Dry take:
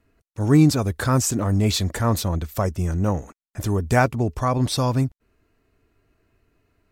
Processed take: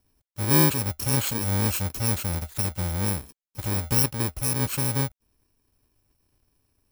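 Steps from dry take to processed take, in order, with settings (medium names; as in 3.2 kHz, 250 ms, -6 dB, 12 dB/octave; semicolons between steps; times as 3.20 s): bit-reversed sample order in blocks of 64 samples; trim -4.5 dB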